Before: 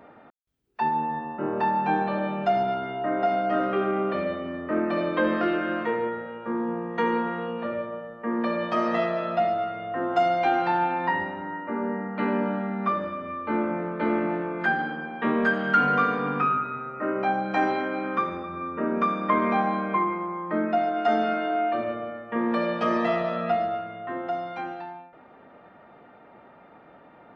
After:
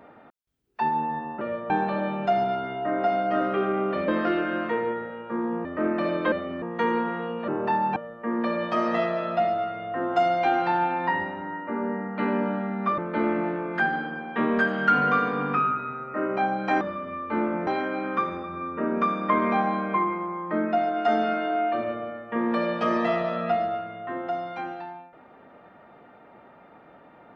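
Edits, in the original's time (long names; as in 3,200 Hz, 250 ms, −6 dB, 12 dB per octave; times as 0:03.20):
0:01.41–0:01.89: swap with 0:07.67–0:07.96
0:04.27–0:04.57: swap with 0:05.24–0:06.81
0:12.98–0:13.84: move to 0:17.67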